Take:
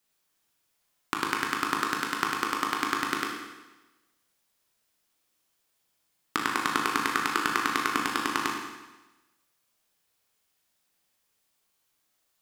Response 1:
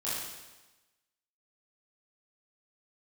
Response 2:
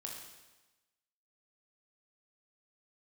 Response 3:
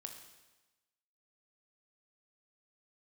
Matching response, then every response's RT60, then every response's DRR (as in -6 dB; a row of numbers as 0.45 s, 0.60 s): 2; 1.1 s, 1.1 s, 1.1 s; -10.5 dB, -1.0 dB, 4.0 dB